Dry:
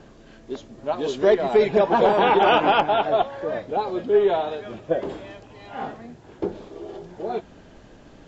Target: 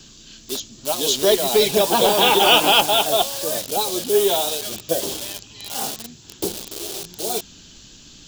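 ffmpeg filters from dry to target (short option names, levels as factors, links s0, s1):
-filter_complex "[0:a]acrossover=split=380|1000[s0][s1][s2];[s1]acrusher=bits=6:mix=0:aa=0.000001[s3];[s0][s3][s2]amix=inputs=3:normalize=0,aexciter=amount=9.6:drive=3.5:freq=2900"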